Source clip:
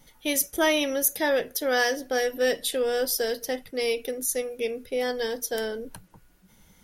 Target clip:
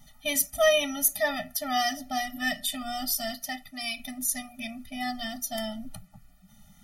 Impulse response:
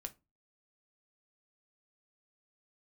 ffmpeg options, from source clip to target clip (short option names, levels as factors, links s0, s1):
-filter_complex "[0:a]asettb=1/sr,asplit=3[s0][s1][s2];[s0]atrim=end=3.354[s3];[s1]atrim=start=3.35:end=4,asetpts=PTS-STARTPTS,afade=t=in:d=0.004:c=qsin,afade=t=out:st=0.646:d=0.004:c=qsin,lowshelf=f=450:g=-7[s4];[s2]atrim=start=3.996[s5];[s3][s4]acrossfade=d=0.004:c1=hsin:c2=qsin[s6];[s6][s5]acrossfade=d=0.004:c1=qsin:c2=hsin,asplit=2[s7][s8];[1:a]atrim=start_sample=2205[s9];[s8][s9]afir=irnorm=-1:irlink=0,volume=0.596[s10];[s7][s10]amix=inputs=2:normalize=0,afftfilt=real='re*eq(mod(floor(b*sr/1024/290),2),0)':imag='im*eq(mod(floor(b*sr/1024/290),2),0)':win_size=1024:overlap=0.75"